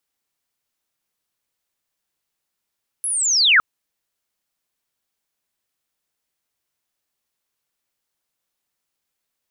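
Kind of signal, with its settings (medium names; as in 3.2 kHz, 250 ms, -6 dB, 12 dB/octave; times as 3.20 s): sweep linear 11 kHz -> 1.2 kHz -21 dBFS -> -9 dBFS 0.56 s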